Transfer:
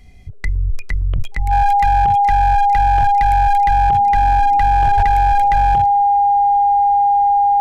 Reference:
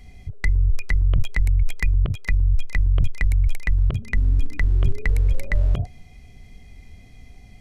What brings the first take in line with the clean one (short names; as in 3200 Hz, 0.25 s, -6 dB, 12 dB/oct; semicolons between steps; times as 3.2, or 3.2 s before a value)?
clip repair -8.5 dBFS; notch 810 Hz, Q 30; 4.96–5.08 HPF 140 Hz 24 dB/oct